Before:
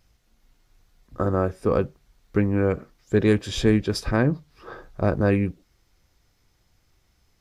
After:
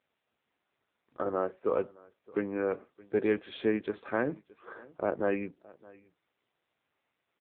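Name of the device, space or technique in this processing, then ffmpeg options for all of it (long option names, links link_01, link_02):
satellite phone: -af "highpass=350,lowpass=3100,aecho=1:1:619:0.0708,volume=-4.5dB" -ar 8000 -c:a libopencore_amrnb -b:a 6700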